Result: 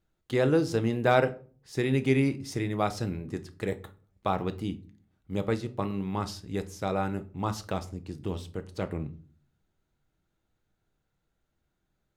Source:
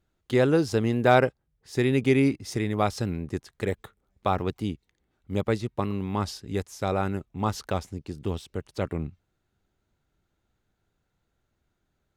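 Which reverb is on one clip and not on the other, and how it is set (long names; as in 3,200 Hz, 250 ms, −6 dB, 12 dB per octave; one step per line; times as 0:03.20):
rectangular room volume 310 cubic metres, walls furnished, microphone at 0.6 metres
level −3.5 dB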